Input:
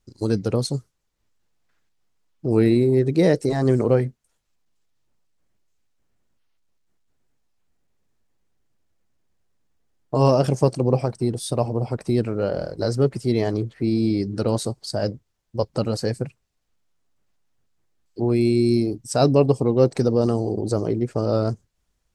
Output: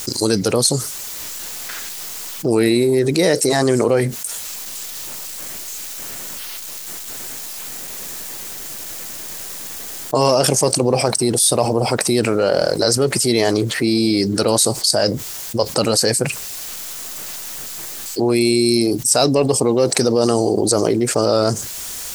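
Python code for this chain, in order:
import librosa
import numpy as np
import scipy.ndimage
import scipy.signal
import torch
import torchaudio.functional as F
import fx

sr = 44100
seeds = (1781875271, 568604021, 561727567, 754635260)

p1 = fx.riaa(x, sr, side='recording')
p2 = np.clip(10.0 ** (13.0 / 20.0) * p1, -1.0, 1.0) / 10.0 ** (13.0 / 20.0)
p3 = p1 + F.gain(torch.from_numpy(p2), -6.5).numpy()
y = fx.env_flatten(p3, sr, amount_pct=70)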